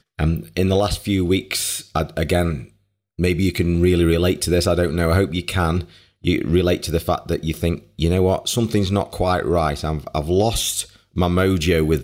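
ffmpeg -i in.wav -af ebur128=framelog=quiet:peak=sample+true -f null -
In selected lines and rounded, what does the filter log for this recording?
Integrated loudness:
  I:         -20.1 LUFS
  Threshold: -30.3 LUFS
Loudness range:
  LRA:         2.1 LU
  Threshold: -40.3 LUFS
  LRA low:   -21.2 LUFS
  LRA high:  -19.2 LUFS
Sample peak:
  Peak:       -6.0 dBFS
True peak:
  Peak:       -6.0 dBFS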